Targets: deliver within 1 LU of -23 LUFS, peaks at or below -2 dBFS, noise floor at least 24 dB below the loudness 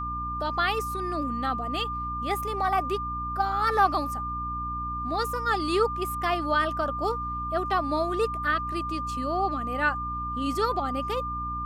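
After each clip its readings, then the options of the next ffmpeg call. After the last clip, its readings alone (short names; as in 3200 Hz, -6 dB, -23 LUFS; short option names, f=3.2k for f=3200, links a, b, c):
hum 60 Hz; harmonics up to 300 Hz; hum level -35 dBFS; steady tone 1200 Hz; tone level -30 dBFS; loudness -27.5 LUFS; peak -9.5 dBFS; loudness target -23.0 LUFS
-> -af "bandreject=f=60:t=h:w=4,bandreject=f=120:t=h:w=4,bandreject=f=180:t=h:w=4,bandreject=f=240:t=h:w=4,bandreject=f=300:t=h:w=4"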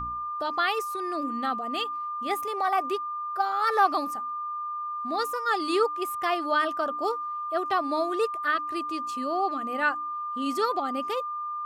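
hum none; steady tone 1200 Hz; tone level -30 dBFS
-> -af "bandreject=f=1.2k:w=30"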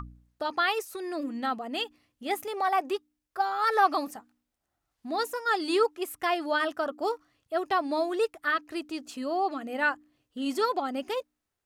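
steady tone none; loudness -29.5 LUFS; peak -11.0 dBFS; loudness target -23.0 LUFS
-> -af "volume=6.5dB"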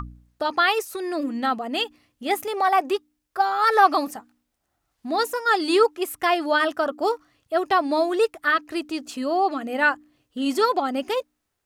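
loudness -23.0 LUFS; peak -4.5 dBFS; noise floor -77 dBFS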